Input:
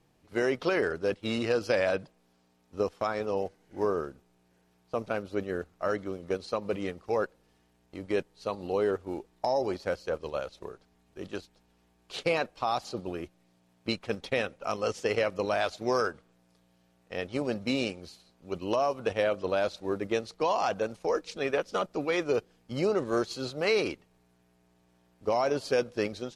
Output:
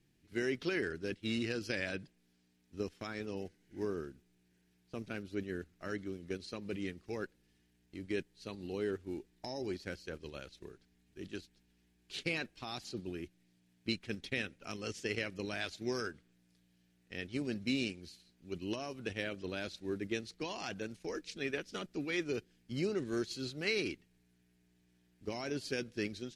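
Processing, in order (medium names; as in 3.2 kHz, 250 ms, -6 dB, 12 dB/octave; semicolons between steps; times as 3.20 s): high-order bell 780 Hz -13.5 dB; trim -4 dB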